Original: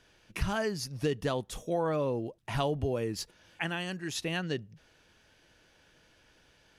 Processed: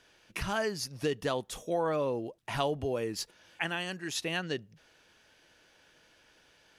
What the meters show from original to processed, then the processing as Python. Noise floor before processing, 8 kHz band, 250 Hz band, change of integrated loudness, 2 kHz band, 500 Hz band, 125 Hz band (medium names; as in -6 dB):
-65 dBFS, +1.5 dB, -2.5 dB, -0.5 dB, +1.5 dB, 0.0 dB, -5.0 dB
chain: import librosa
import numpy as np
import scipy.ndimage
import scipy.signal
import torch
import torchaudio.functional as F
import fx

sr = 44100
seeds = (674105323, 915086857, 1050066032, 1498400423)

y = fx.low_shelf(x, sr, hz=200.0, db=-10.0)
y = y * 10.0 ** (1.5 / 20.0)